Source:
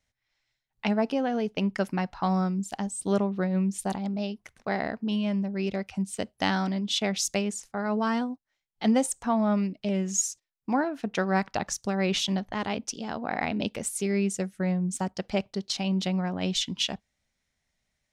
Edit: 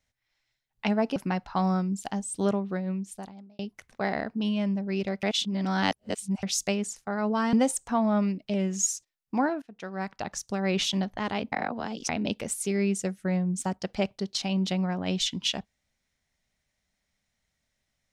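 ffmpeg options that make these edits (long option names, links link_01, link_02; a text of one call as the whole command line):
ffmpeg -i in.wav -filter_complex "[0:a]asplit=9[link_01][link_02][link_03][link_04][link_05][link_06][link_07][link_08][link_09];[link_01]atrim=end=1.162[link_10];[link_02]atrim=start=1.828:end=4.26,asetpts=PTS-STARTPTS,afade=type=out:start_time=1.212:duration=1.22[link_11];[link_03]atrim=start=4.26:end=5.902,asetpts=PTS-STARTPTS,afade=type=in:duration=0.004:curve=hsin[link_12];[link_04]atrim=start=5.898:end=7.102,asetpts=PTS-STARTPTS,areverse[link_13];[link_05]atrim=start=7.098:end=8.202[link_14];[link_06]atrim=start=8.878:end=10.97,asetpts=PTS-STARTPTS,afade=type=out:start_time=2.088:duration=0.004:curve=hsin:silence=0.0841395[link_15];[link_07]atrim=start=10.97:end=12.872,asetpts=PTS-STARTPTS,afade=type=in:duration=1.15:silence=0.0841395[link_16];[link_08]atrim=start=12.868:end=13.442,asetpts=PTS-STARTPTS,areverse[link_17];[link_09]atrim=start=13.438[link_18];[link_11][link_12]concat=n=2:v=0:a=1[link_19];[link_10][link_19]acrossfade=duration=0.004:curve1=hsin:curve2=hsin[link_20];[link_20][link_13]acrossfade=duration=0.004:curve1=hsin:curve2=hsin[link_21];[link_21][link_14]acrossfade=duration=0.004:curve1=hsin:curve2=hsin[link_22];[link_15][link_16]concat=n=2:v=0:a=1[link_23];[link_22][link_23]acrossfade=duration=0.004:curve1=hsin:curve2=hsin[link_24];[link_24][link_17]acrossfade=duration=0.004:curve1=hsin:curve2=hsin[link_25];[link_25][link_18]acrossfade=duration=0.004:curve1=hsin:curve2=hsin" out.wav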